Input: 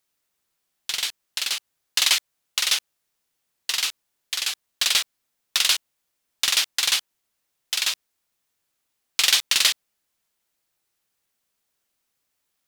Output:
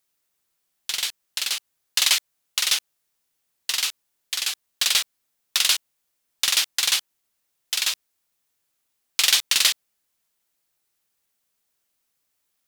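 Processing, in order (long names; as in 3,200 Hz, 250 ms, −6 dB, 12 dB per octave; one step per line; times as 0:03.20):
high-shelf EQ 7,000 Hz +4 dB
level −1 dB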